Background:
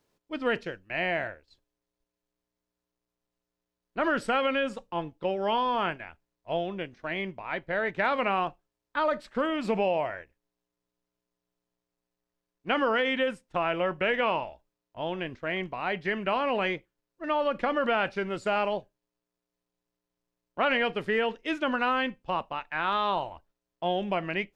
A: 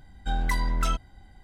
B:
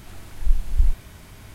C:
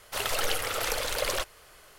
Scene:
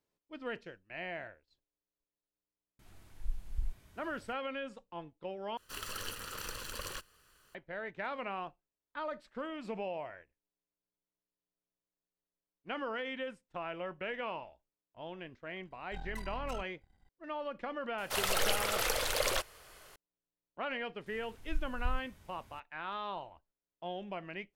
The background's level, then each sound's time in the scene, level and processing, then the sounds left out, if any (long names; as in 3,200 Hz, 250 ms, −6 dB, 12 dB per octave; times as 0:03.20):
background −12.5 dB
0:02.79: mix in B −17.5 dB
0:05.57: overwrite with C −11 dB + lower of the sound and its delayed copy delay 0.67 ms
0:15.66: mix in A −14.5 dB + gain on one half-wave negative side −12 dB
0:17.98: mix in C −2.5 dB
0:21.06: mix in B −16.5 dB